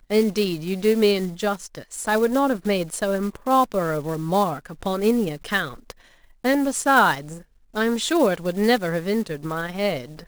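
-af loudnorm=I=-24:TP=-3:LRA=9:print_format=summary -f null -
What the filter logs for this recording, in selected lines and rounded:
Input Integrated:    -22.5 LUFS
Input True Peak:      -5.0 dBTP
Input LRA:             2.2 LU
Input Threshold:     -33.0 LUFS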